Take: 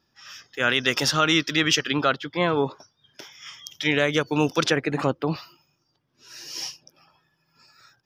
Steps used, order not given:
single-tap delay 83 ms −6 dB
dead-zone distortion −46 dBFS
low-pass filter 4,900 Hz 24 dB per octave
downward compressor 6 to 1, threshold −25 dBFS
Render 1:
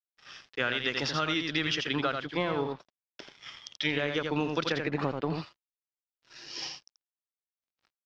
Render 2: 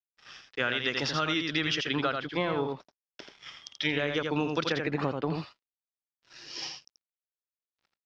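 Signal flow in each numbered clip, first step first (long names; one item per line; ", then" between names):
single-tap delay, then downward compressor, then dead-zone distortion, then low-pass filter
dead-zone distortion, then single-tap delay, then downward compressor, then low-pass filter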